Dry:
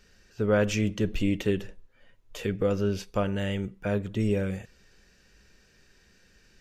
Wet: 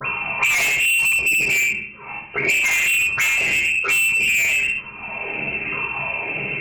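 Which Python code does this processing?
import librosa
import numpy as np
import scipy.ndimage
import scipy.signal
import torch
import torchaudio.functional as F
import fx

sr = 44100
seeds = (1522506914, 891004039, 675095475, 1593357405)

p1 = fx.pitch_ramps(x, sr, semitones=10.0, every_ms=952)
p2 = scipy.signal.sosfilt(scipy.signal.cheby1(4, 1.0, 170.0, 'highpass', fs=sr, output='sos'), p1)
p3 = fx.low_shelf(p2, sr, hz=270.0, db=10.0)
p4 = fx.level_steps(p3, sr, step_db=13)
p5 = p3 + (p4 * 10.0 ** (-1.0 / 20.0))
p6 = fx.dispersion(p5, sr, late='lows', ms=50.0, hz=940.0)
p7 = fx.freq_invert(p6, sr, carrier_hz=2900)
p8 = p7 + fx.room_early_taps(p7, sr, ms=(43, 70), db=(-10.5, -6.0), dry=0)
p9 = fx.rev_fdn(p8, sr, rt60_s=0.5, lf_ratio=1.55, hf_ratio=0.7, size_ms=44.0, drr_db=-1.5)
p10 = 10.0 ** (-24.0 / 20.0) * np.tanh(p9 / 10.0 ** (-24.0 / 20.0))
p11 = fx.band_squash(p10, sr, depth_pct=100)
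y = p11 * 10.0 ** (8.0 / 20.0)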